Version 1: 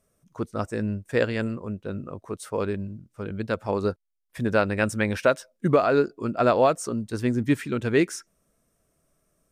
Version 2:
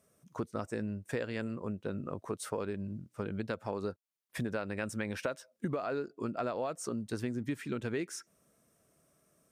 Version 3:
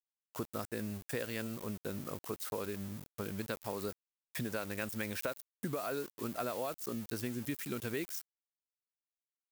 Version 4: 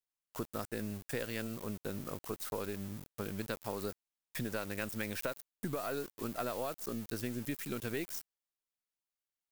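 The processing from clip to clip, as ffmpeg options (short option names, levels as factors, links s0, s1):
-filter_complex "[0:a]highpass=100,asplit=2[s0][s1];[s1]alimiter=limit=0.168:level=0:latency=1:release=32,volume=0.794[s2];[s0][s2]amix=inputs=2:normalize=0,acompressor=threshold=0.0355:ratio=6,volume=0.631"
-filter_complex "[0:a]acrossover=split=5200[s0][s1];[s1]acompressor=threshold=0.00126:ratio=4:attack=1:release=60[s2];[s0][s2]amix=inputs=2:normalize=0,aeval=exprs='val(0)*gte(abs(val(0)),0.00473)':c=same,aemphasis=mode=production:type=75fm,volume=0.75"
-af "aeval=exprs='if(lt(val(0),0),0.708*val(0),val(0))':c=same,volume=1.12"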